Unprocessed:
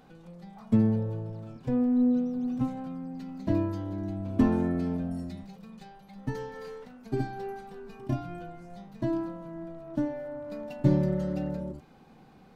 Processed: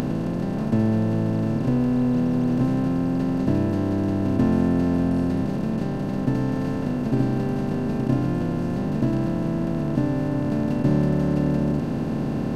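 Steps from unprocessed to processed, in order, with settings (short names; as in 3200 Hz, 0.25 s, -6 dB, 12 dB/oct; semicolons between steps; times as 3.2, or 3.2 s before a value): per-bin compression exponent 0.2; upward compressor, threshold -27 dBFS; gain -2 dB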